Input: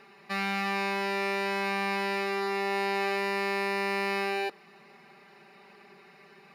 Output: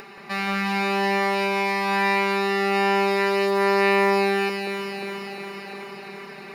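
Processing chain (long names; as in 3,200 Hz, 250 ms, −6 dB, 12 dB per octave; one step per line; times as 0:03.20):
upward compression, threshold −39 dBFS
delay that swaps between a low-pass and a high-pass 177 ms, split 1,900 Hz, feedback 83%, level −2 dB
level +4 dB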